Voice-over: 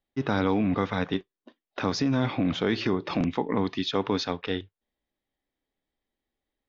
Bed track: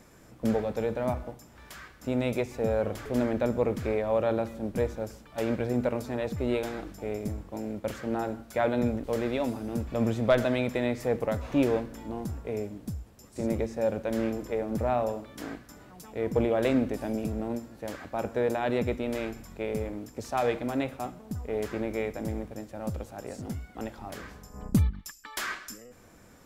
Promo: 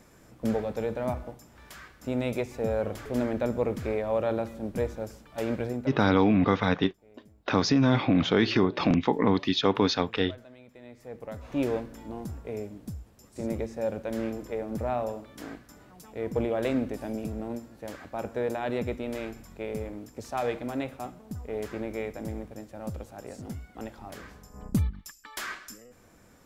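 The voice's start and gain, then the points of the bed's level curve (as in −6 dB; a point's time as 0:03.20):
5.70 s, +3.0 dB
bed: 0:05.67 −1 dB
0:06.14 −24 dB
0:10.66 −24 dB
0:11.65 −2.5 dB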